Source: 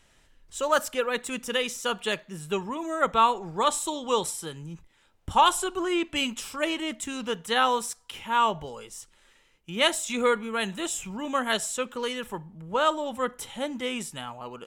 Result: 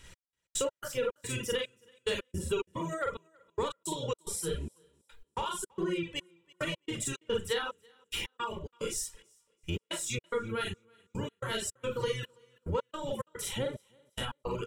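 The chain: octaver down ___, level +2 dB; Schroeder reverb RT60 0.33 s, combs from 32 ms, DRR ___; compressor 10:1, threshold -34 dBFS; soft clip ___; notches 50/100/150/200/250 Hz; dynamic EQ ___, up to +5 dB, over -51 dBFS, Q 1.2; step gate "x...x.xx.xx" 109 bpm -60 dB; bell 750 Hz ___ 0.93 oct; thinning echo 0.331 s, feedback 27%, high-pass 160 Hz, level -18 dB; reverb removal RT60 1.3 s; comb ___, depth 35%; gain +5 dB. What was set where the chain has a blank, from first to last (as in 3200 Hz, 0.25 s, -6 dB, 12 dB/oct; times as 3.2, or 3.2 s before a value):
1 oct, -2 dB, -26 dBFS, 480 Hz, -8 dB, 2.1 ms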